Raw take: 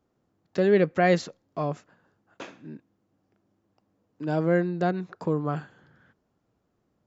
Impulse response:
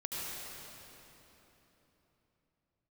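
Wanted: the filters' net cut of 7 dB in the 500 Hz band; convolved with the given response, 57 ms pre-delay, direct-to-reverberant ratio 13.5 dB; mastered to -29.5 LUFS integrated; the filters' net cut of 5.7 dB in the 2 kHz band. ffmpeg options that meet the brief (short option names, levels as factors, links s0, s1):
-filter_complex "[0:a]equalizer=f=500:t=o:g=-9,equalizer=f=2000:t=o:g=-6.5,asplit=2[s0][s1];[1:a]atrim=start_sample=2205,adelay=57[s2];[s1][s2]afir=irnorm=-1:irlink=0,volume=0.141[s3];[s0][s3]amix=inputs=2:normalize=0,volume=1.06"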